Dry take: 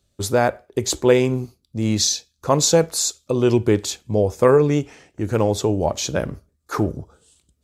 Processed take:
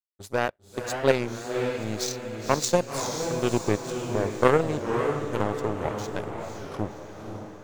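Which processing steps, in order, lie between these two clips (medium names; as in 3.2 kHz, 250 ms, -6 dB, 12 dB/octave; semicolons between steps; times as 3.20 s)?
power-law waveshaper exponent 2; echo that smears into a reverb 534 ms, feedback 51%, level -5 dB; warped record 33 1/3 rpm, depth 160 cents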